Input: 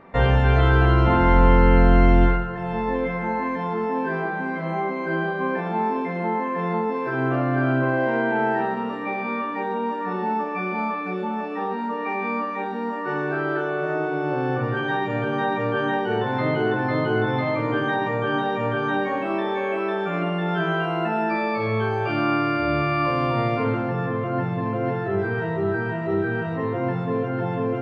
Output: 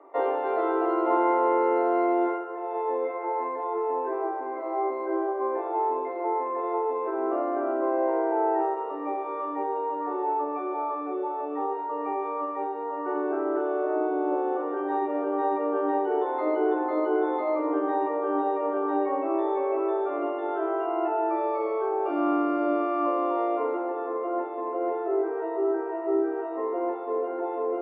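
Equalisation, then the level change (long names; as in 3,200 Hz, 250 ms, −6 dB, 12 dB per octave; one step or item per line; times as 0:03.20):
Savitzky-Golay smoothing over 65 samples
Chebyshev high-pass filter 280 Hz, order 10
notch filter 490 Hz, Q 12
0.0 dB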